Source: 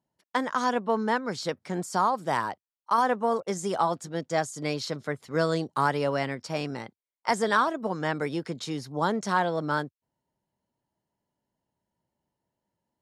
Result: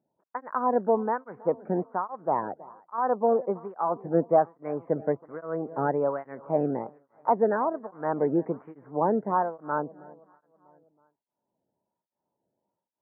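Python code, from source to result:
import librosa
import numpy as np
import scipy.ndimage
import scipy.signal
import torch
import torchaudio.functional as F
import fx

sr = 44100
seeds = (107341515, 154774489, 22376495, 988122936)

p1 = fx.rider(x, sr, range_db=10, speed_s=0.5)
p2 = x + (p1 * librosa.db_to_amplitude(2.0))
p3 = fx.leveller(p2, sr, passes=1, at=(3.96, 4.46))
p4 = scipy.ndimage.gaussian_filter1d(p3, 7.9, mode='constant')
p5 = fx.echo_feedback(p4, sr, ms=322, feedback_pct=52, wet_db=-22.5)
y = fx.flanger_cancel(p5, sr, hz=1.2, depth_ms=1.0)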